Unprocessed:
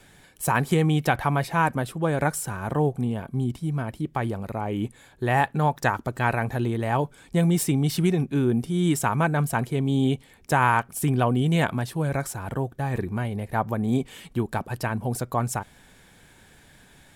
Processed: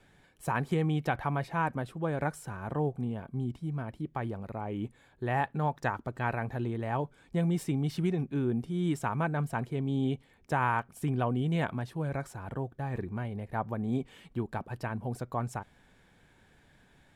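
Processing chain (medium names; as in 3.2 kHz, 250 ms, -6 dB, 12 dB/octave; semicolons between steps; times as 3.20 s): low-pass 2.7 kHz 6 dB/octave; trim -7.5 dB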